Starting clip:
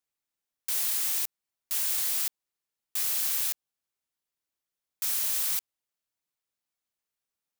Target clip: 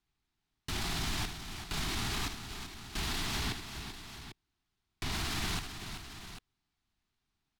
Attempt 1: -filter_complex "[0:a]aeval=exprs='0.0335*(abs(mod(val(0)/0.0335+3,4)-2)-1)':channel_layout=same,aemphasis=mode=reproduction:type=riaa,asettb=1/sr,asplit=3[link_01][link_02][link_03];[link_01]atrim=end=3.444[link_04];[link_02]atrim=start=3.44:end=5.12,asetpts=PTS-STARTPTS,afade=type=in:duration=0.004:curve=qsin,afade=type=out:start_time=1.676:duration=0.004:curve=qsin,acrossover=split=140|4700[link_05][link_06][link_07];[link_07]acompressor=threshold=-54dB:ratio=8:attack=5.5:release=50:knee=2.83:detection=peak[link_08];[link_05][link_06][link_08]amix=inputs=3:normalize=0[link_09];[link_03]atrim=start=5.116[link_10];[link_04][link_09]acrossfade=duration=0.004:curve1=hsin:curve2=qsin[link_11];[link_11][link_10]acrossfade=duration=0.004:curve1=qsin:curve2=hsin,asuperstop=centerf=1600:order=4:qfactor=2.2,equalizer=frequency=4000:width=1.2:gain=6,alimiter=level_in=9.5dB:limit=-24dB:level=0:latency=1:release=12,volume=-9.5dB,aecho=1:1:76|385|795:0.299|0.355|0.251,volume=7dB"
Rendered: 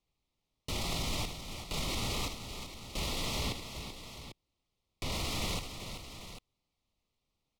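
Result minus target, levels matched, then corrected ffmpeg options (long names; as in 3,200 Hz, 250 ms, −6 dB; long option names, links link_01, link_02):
500 Hz band +5.0 dB
-filter_complex "[0:a]aeval=exprs='0.0335*(abs(mod(val(0)/0.0335+3,4)-2)-1)':channel_layout=same,aemphasis=mode=reproduction:type=riaa,asettb=1/sr,asplit=3[link_01][link_02][link_03];[link_01]atrim=end=3.444[link_04];[link_02]atrim=start=3.44:end=5.12,asetpts=PTS-STARTPTS,afade=type=in:duration=0.004:curve=qsin,afade=type=out:start_time=1.676:duration=0.004:curve=qsin,acrossover=split=140|4700[link_05][link_06][link_07];[link_07]acompressor=threshold=-54dB:ratio=8:attack=5.5:release=50:knee=2.83:detection=peak[link_08];[link_05][link_06][link_08]amix=inputs=3:normalize=0[link_09];[link_03]atrim=start=5.116[link_10];[link_04][link_09]acrossfade=duration=0.004:curve1=hsin:curve2=qsin[link_11];[link_11][link_10]acrossfade=duration=0.004:curve1=qsin:curve2=hsin,asuperstop=centerf=530:order=4:qfactor=2.2,equalizer=frequency=4000:width=1.2:gain=6,alimiter=level_in=9.5dB:limit=-24dB:level=0:latency=1:release=12,volume=-9.5dB,aecho=1:1:76|385|795:0.299|0.355|0.251,volume=7dB"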